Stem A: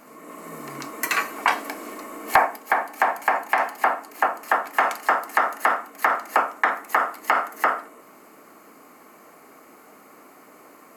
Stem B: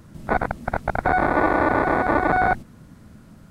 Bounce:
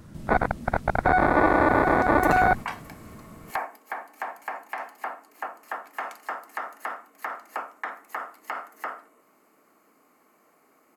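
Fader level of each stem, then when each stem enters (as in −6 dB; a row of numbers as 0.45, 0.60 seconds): −13.0, −0.5 decibels; 1.20, 0.00 seconds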